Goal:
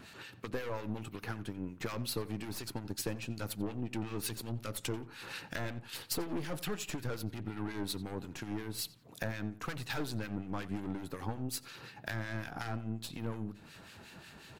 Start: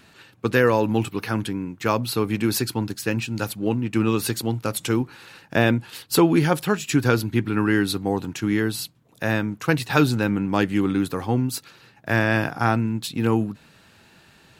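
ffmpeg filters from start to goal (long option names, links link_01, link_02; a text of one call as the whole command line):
ffmpeg -i in.wav -filter_complex "[0:a]dynaudnorm=framelen=280:gausssize=17:maxgain=11.5dB,aeval=exprs='(tanh(11.2*val(0)+0.6)-tanh(0.6))/11.2':channel_layout=same,acompressor=threshold=-37dB:ratio=16,acrossover=split=1400[link_01][link_02];[link_01]aeval=exprs='val(0)*(1-0.7/2+0.7/2*cos(2*PI*5.5*n/s))':channel_layout=same[link_03];[link_02]aeval=exprs='val(0)*(1-0.7/2-0.7/2*cos(2*PI*5.5*n/s))':channel_layout=same[link_04];[link_03][link_04]amix=inputs=2:normalize=0,asplit=2[link_05][link_06];[link_06]adelay=89,lowpass=frequency=3200:poles=1,volume=-16dB,asplit=2[link_07][link_08];[link_08]adelay=89,lowpass=frequency=3200:poles=1,volume=0.33,asplit=2[link_09][link_10];[link_10]adelay=89,lowpass=frequency=3200:poles=1,volume=0.33[link_11];[link_07][link_09][link_11]amix=inputs=3:normalize=0[link_12];[link_05][link_12]amix=inputs=2:normalize=0,volume=6dB" out.wav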